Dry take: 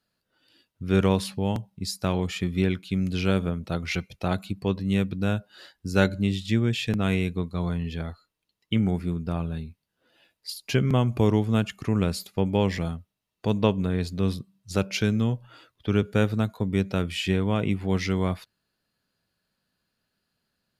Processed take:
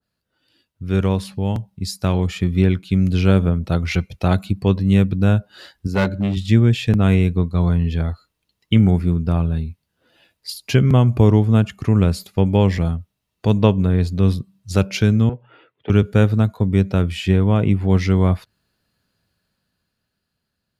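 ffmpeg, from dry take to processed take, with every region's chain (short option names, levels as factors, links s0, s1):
-filter_complex "[0:a]asettb=1/sr,asplit=3[s0][s1][s2];[s0]atrim=end=5.874[s3];[s1]atrim=start=5.87:end=6.37,asetpts=PTS-STARTPTS,afade=t=in:d=0.004:c=qsin,afade=t=out:st=0.496:d=0.004:c=qsin,equalizer=f=9000:w=0.45:g=-12,aeval=exprs='clip(val(0),-1,0.0891)':c=same,highpass=f=160:p=1[s4];[s2]atrim=start=6.366[s5];[s3][s4]acrossfade=d=0.004:c1=hsin:c2=qsin[s6];[s6][s5]acrossfade=d=0.004:c1=qsin:c2=hsin,asettb=1/sr,asplit=3[s7][s8][s9];[s7]atrim=end=15.294[s10];[s8]atrim=start=15.29:end=15.9,asetpts=PTS-STARTPTS,afade=t=in:d=0.004:c=qsin,afade=t=out:st=0.606:d=0.004:c=qsin,asoftclip=type=hard:threshold=0.0944,highpass=f=170:w=0.5412,highpass=f=170:w=1.3066,equalizer=f=200:t=q:w=4:g=-10,equalizer=f=290:t=q:w=4:g=-5,equalizer=f=430:t=q:w=4:g=6,equalizer=f=640:t=q:w=4:g=-4,equalizer=f=1100:t=q:w=4:g=-7,equalizer=f=1600:t=q:w=4:g=-4,lowpass=f=2600:w=0.5412,lowpass=f=2600:w=1.3066[s11];[s9]atrim=start=15.896[s12];[s10][s11]acrossfade=d=0.004:c1=hsin:c2=qsin[s13];[s13][s12]acrossfade=d=0.004:c1=qsin:c2=hsin,equalizer=f=72:t=o:w=1.9:g=7.5,dynaudnorm=f=140:g=21:m=3.76,adynamicequalizer=threshold=0.0158:dfrequency=1700:dqfactor=0.7:tfrequency=1700:tqfactor=0.7:attack=5:release=100:ratio=0.375:range=3:mode=cutabove:tftype=highshelf,volume=0.891"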